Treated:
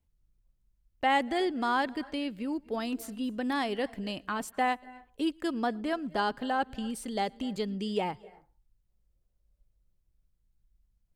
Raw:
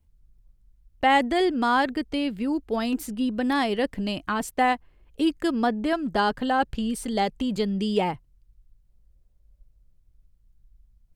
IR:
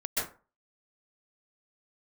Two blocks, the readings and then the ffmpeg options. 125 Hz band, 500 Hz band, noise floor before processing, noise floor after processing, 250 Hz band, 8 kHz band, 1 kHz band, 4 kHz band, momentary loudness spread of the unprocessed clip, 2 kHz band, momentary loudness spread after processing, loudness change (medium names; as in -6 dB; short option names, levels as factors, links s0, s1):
-8.5 dB, -6.5 dB, -62 dBFS, -74 dBFS, -7.5 dB, -6.0 dB, -6.0 dB, -6.0 dB, 7 LU, -6.0 dB, 8 LU, -6.5 dB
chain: -filter_complex "[0:a]lowshelf=f=130:g=-7.5,asplit=2[s0][s1];[1:a]atrim=start_sample=2205,adelay=114[s2];[s1][s2]afir=irnorm=-1:irlink=0,volume=0.0398[s3];[s0][s3]amix=inputs=2:normalize=0,volume=0.501"